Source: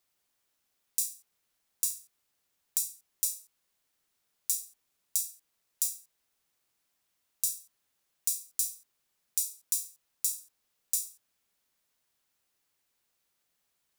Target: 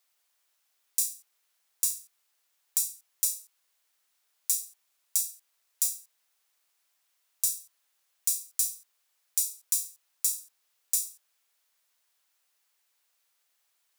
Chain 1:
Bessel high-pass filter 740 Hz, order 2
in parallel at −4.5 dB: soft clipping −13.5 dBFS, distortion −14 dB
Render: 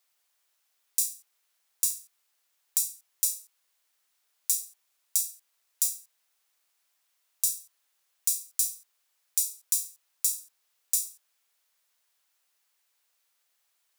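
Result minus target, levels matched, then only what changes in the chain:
soft clipping: distortion −6 dB
change: soft clipping −22.5 dBFS, distortion −9 dB

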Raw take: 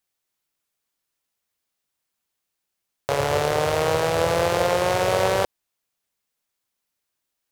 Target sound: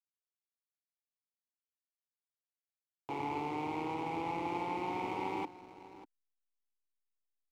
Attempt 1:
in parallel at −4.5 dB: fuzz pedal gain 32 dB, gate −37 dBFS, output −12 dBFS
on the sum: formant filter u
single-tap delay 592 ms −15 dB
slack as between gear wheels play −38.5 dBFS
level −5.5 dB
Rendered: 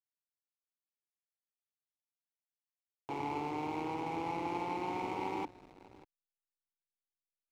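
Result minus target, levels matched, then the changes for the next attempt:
slack as between gear wheels: distortion +8 dB
change: slack as between gear wheels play −47.5 dBFS

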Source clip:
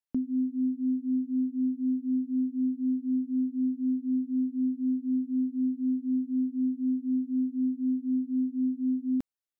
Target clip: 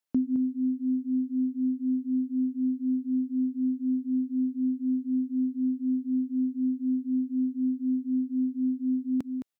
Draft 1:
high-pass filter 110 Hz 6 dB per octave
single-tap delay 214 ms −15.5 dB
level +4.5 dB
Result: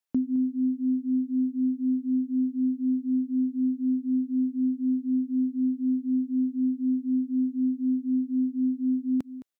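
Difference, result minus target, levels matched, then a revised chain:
echo-to-direct −6.5 dB
high-pass filter 110 Hz 6 dB per octave
single-tap delay 214 ms −9 dB
level +4.5 dB

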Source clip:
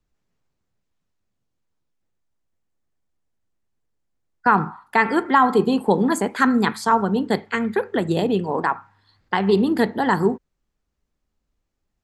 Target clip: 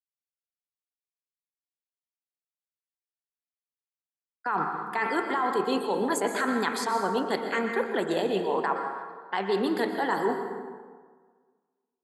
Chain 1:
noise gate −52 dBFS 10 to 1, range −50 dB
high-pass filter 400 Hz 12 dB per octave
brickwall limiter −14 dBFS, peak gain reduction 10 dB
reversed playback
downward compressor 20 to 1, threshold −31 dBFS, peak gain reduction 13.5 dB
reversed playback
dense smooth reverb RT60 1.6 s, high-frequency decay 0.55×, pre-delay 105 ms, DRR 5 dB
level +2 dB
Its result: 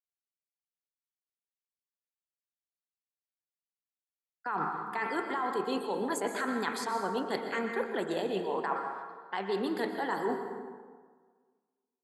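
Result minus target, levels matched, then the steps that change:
downward compressor: peak gain reduction +5.5 dB
change: downward compressor 20 to 1, threshold −25 dBFS, peak gain reduction 8 dB

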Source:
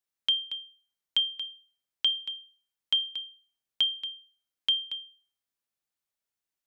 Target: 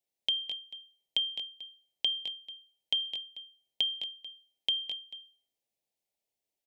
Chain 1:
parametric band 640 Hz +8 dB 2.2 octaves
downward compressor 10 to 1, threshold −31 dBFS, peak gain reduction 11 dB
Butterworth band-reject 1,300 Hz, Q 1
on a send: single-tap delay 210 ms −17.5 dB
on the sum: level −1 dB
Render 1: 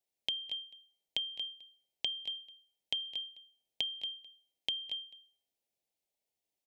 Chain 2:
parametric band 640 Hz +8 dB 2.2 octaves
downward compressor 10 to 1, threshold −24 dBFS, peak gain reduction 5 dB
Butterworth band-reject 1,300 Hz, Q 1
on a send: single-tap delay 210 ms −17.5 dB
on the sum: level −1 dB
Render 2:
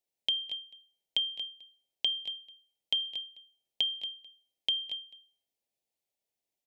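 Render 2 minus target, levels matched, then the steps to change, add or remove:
echo-to-direct −8.5 dB
change: single-tap delay 210 ms −9 dB

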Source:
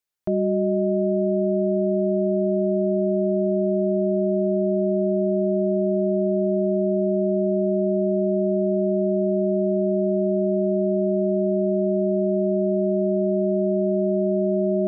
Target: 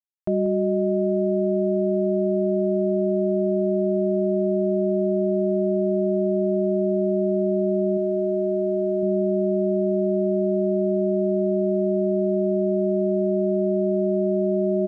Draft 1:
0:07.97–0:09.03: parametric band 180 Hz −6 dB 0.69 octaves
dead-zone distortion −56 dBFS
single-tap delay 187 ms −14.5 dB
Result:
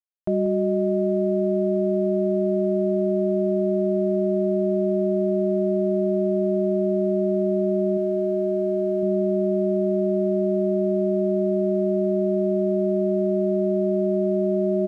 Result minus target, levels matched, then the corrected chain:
dead-zone distortion: distortion +7 dB
0:07.97–0:09.03: parametric band 180 Hz −6 dB 0.69 octaves
dead-zone distortion −63 dBFS
single-tap delay 187 ms −14.5 dB

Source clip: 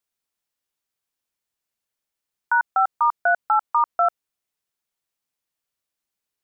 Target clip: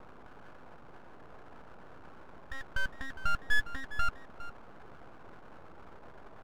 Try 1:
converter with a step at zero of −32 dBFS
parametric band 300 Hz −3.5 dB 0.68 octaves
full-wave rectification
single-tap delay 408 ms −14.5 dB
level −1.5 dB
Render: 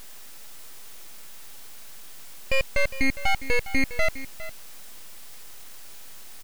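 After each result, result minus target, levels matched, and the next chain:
1,000 Hz band −5.5 dB; converter with a step at zero: distortion −8 dB
converter with a step at zero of −32 dBFS
Chebyshev low-pass with heavy ripple 890 Hz, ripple 6 dB
parametric band 300 Hz −3.5 dB 0.68 octaves
full-wave rectification
single-tap delay 408 ms −14.5 dB
level −1.5 dB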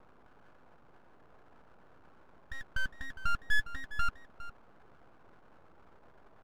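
converter with a step at zero: distortion −8 dB
converter with a step at zero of −23.5 dBFS
Chebyshev low-pass with heavy ripple 890 Hz, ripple 6 dB
parametric band 300 Hz −3.5 dB 0.68 octaves
full-wave rectification
single-tap delay 408 ms −14.5 dB
level −1.5 dB

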